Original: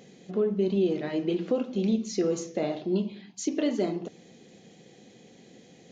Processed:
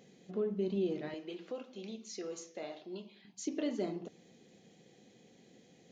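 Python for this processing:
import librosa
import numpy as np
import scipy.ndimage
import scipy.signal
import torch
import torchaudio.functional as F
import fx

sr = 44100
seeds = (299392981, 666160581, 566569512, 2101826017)

y = fx.highpass(x, sr, hz=850.0, slope=6, at=(1.14, 3.25))
y = F.gain(torch.from_numpy(y), -8.5).numpy()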